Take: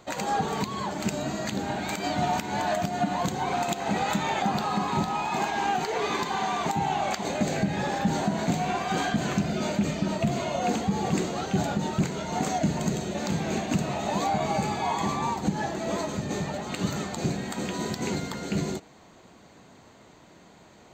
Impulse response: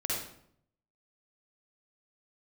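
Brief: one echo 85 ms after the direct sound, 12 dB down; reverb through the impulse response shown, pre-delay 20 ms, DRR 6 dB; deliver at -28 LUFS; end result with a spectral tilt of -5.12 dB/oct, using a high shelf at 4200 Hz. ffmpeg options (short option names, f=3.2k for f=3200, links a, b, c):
-filter_complex "[0:a]highshelf=f=4.2k:g=-3.5,aecho=1:1:85:0.251,asplit=2[a][b];[1:a]atrim=start_sample=2205,adelay=20[c];[b][c]afir=irnorm=-1:irlink=0,volume=-11.5dB[d];[a][d]amix=inputs=2:normalize=0,volume=-1dB"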